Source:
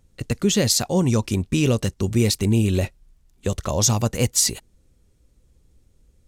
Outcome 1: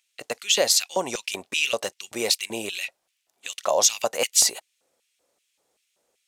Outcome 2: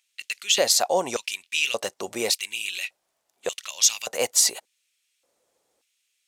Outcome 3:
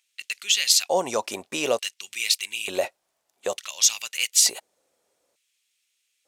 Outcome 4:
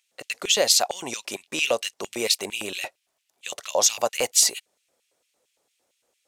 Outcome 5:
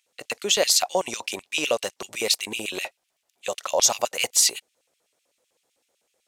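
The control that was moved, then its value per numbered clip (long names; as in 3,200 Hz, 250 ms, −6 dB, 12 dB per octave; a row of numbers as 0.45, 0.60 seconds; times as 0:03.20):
auto-filter high-pass, speed: 2.6, 0.86, 0.56, 4.4, 7.9 Hertz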